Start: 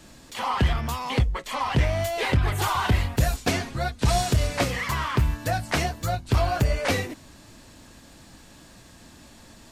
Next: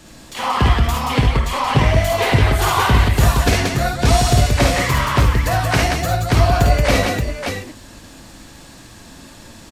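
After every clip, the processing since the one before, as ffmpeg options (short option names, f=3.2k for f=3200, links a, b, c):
-af "aecho=1:1:52|71|179|578:0.668|0.473|0.668|0.562,volume=5dB"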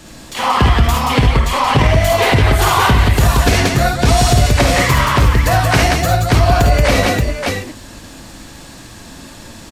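-af "alimiter=level_in=6dB:limit=-1dB:release=50:level=0:latency=1,volume=-1dB"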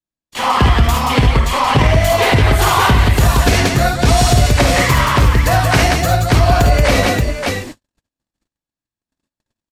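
-af "agate=range=-57dB:threshold=-28dB:ratio=16:detection=peak"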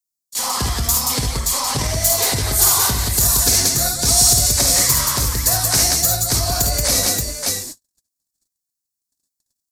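-af "aexciter=amount=8.8:drive=7.6:freq=4.3k,volume=-11dB"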